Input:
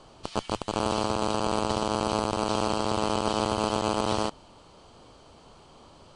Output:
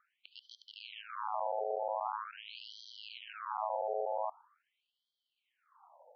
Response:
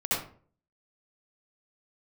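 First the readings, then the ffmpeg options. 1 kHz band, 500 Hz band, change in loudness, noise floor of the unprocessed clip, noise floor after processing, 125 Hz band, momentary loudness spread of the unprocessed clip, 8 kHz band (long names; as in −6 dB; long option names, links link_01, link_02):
−9.0 dB, −10.5 dB, −11.0 dB, −54 dBFS, below −85 dBFS, below −40 dB, 5 LU, below −30 dB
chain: -filter_complex "[0:a]adynamicsmooth=sensitivity=7.5:basefreq=1000,asplit=2[link_01][link_02];[link_02]aderivative[link_03];[1:a]atrim=start_sample=2205[link_04];[link_03][link_04]afir=irnorm=-1:irlink=0,volume=-22.5dB[link_05];[link_01][link_05]amix=inputs=2:normalize=0,alimiter=limit=-16.5dB:level=0:latency=1:release=23,highshelf=frequency=2600:gain=-9,afftfilt=real='re*between(b*sr/1024,590*pow(4400/590,0.5+0.5*sin(2*PI*0.44*pts/sr))/1.41,590*pow(4400/590,0.5+0.5*sin(2*PI*0.44*pts/sr))*1.41)':imag='im*between(b*sr/1024,590*pow(4400/590,0.5+0.5*sin(2*PI*0.44*pts/sr))/1.41,590*pow(4400/590,0.5+0.5*sin(2*PI*0.44*pts/sr))*1.41)':win_size=1024:overlap=0.75"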